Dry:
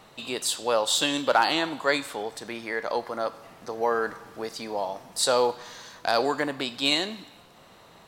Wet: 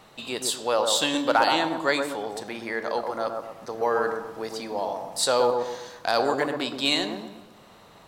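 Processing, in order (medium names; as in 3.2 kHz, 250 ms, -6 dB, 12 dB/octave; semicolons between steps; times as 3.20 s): bucket-brigade echo 122 ms, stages 1024, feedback 41%, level -4 dB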